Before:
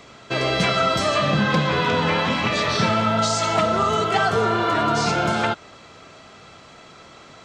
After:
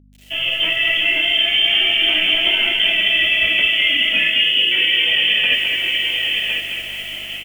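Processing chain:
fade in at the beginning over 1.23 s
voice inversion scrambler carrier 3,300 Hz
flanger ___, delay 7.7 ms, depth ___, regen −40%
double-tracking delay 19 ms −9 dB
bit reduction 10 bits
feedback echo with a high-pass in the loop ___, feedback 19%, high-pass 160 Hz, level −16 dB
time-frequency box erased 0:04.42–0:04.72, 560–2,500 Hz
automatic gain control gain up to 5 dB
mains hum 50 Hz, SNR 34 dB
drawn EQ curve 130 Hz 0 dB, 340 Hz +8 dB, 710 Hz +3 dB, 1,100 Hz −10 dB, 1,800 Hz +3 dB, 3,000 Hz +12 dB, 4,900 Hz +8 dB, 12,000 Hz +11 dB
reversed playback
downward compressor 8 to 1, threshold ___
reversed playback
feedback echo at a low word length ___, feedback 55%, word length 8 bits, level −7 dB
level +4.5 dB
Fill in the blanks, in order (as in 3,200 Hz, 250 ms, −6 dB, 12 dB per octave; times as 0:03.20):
0.39 Hz, 10 ms, 1,063 ms, −19 dBFS, 210 ms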